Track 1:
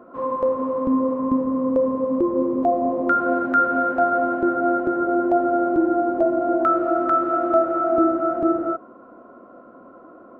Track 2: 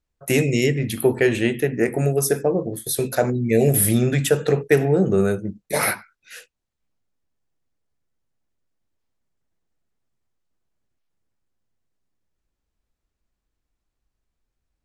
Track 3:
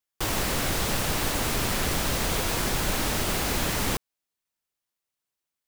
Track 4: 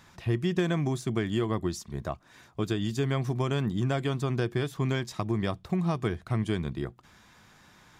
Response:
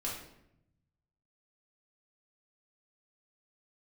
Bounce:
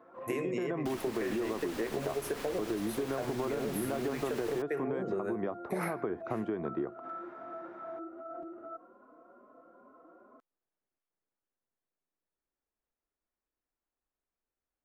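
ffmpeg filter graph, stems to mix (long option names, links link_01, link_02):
-filter_complex "[0:a]alimiter=level_in=1dB:limit=-24dB:level=0:latency=1,volume=-1dB,asplit=2[link_01][link_02];[link_02]adelay=4.1,afreqshift=2.4[link_03];[link_01][link_03]amix=inputs=2:normalize=1,volume=-8.5dB[link_04];[1:a]highshelf=frequency=6000:gain=7,volume=-6.5dB[link_05];[2:a]highshelf=frequency=3800:gain=-8,adelay=650,volume=-3.5dB[link_06];[3:a]dynaudnorm=framelen=380:gausssize=3:maxgain=11.5dB,bandpass=frequency=410:width_type=q:width=0.6:csg=0,volume=-2dB[link_07];[link_04][link_06]amix=inputs=2:normalize=0,lowshelf=frequency=180:gain=-11.5,alimiter=level_in=7dB:limit=-24dB:level=0:latency=1:release=198,volume=-7dB,volume=0dB[link_08];[link_05][link_07]amix=inputs=2:normalize=0,acrossover=split=260 2200:gain=0.178 1 0.141[link_09][link_10][link_11];[link_09][link_10][link_11]amix=inputs=3:normalize=0,alimiter=limit=-20dB:level=0:latency=1:release=108,volume=0dB[link_12];[link_08][link_12]amix=inputs=2:normalize=0,acompressor=threshold=-30dB:ratio=6"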